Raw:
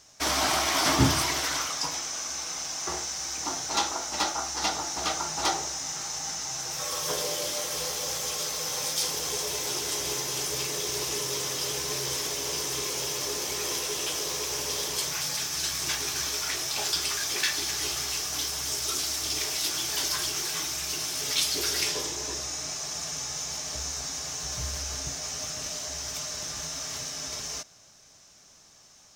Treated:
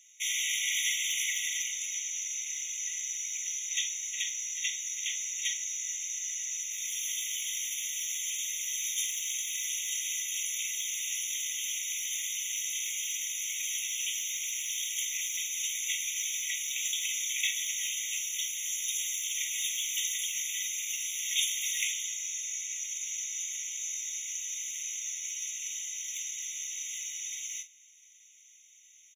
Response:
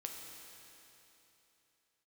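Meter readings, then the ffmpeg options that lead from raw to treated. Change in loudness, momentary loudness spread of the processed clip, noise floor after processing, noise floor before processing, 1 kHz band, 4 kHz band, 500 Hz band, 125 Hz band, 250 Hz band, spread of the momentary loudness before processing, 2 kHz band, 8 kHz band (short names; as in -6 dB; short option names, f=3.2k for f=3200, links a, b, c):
-3.0 dB, 5 LU, -58 dBFS, -55 dBFS, under -40 dB, -5.0 dB, under -40 dB, under -40 dB, under -40 dB, 7 LU, -2.5 dB, -0.5 dB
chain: -filter_complex "[0:a]asplit=2[a][b];[b]adelay=45,volume=-11dB[c];[a][c]amix=inputs=2:normalize=0,afreqshift=-38,afftfilt=real='re*eq(mod(floor(b*sr/1024/1900),2),1)':imag='im*eq(mod(floor(b*sr/1024/1900),2),1)':win_size=1024:overlap=0.75"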